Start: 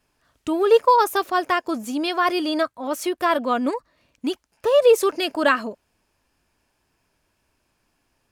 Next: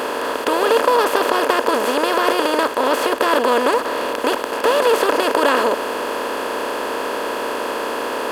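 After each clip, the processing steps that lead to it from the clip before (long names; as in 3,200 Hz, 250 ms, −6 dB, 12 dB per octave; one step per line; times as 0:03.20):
compressor on every frequency bin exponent 0.2
level −5.5 dB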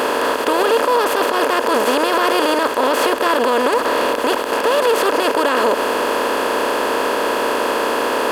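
brickwall limiter −11.5 dBFS, peak gain reduction 10 dB
level +5 dB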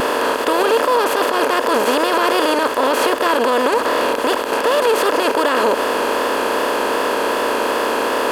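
pitch vibrato 2.6 Hz 40 cents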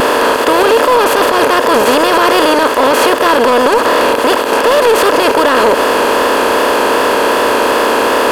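soft clipping −10.5 dBFS, distortion −17 dB
level +8.5 dB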